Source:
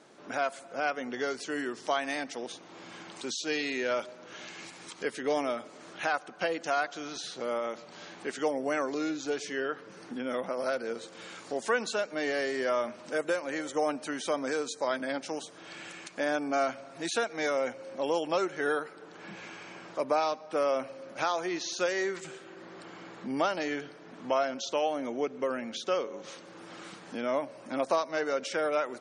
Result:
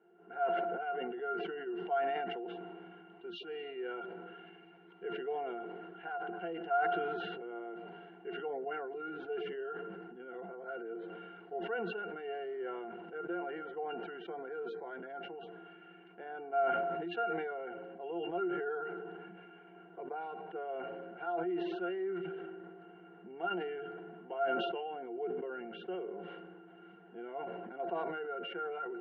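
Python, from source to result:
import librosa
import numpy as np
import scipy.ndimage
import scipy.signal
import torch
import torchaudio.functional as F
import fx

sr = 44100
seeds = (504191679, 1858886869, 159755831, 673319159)

y = fx.cabinet(x, sr, low_hz=230.0, low_slope=12, high_hz=2800.0, hz=(250.0, 440.0, 1100.0, 2300.0), db=(-5, 7, 3, 7))
y = fx.octave_resonator(y, sr, note='F', decay_s=0.1)
y = fx.sustainer(y, sr, db_per_s=25.0)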